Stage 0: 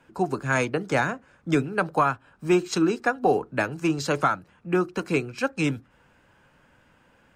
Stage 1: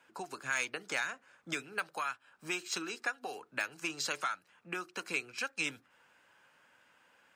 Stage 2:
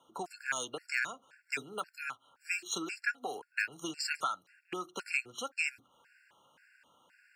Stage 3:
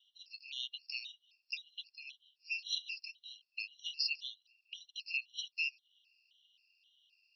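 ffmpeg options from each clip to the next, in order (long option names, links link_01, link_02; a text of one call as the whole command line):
ffmpeg -i in.wav -filter_complex "[0:a]deesser=0.6,highpass=frequency=1200:poles=1,acrossover=split=1700[link_01][link_02];[link_01]acompressor=threshold=-39dB:ratio=6[link_03];[link_03][link_02]amix=inputs=2:normalize=0,volume=-1.5dB" out.wav
ffmpeg -i in.wav -af "afftfilt=real='re*gt(sin(2*PI*1.9*pts/sr)*(1-2*mod(floor(b*sr/1024/1400),2)),0)':imag='im*gt(sin(2*PI*1.9*pts/sr)*(1-2*mod(floor(b*sr/1024/1400),2)),0)':win_size=1024:overlap=0.75,volume=3dB" out.wav
ffmpeg -i in.wav -af "asuperpass=centerf=3900:order=20:qfactor=1.3,volume=4dB" out.wav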